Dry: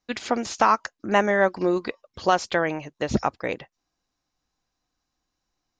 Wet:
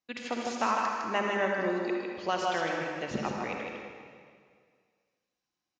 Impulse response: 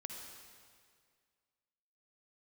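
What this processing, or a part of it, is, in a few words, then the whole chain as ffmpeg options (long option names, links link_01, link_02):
PA in a hall: -filter_complex "[0:a]highpass=110,equalizer=frequency=2600:width_type=o:width=0.69:gain=5.5,aecho=1:1:156:0.631[link_01];[1:a]atrim=start_sample=2205[link_02];[link_01][link_02]afir=irnorm=-1:irlink=0,volume=-6.5dB"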